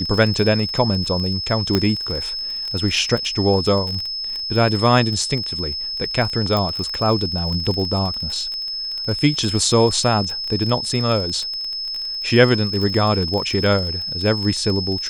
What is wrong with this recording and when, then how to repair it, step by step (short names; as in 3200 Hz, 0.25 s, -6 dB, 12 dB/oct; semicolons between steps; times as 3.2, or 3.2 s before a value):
crackle 26/s -23 dBFS
tone 5200 Hz -24 dBFS
1.75 pop -4 dBFS
6.57 pop -9 dBFS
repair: de-click; notch 5200 Hz, Q 30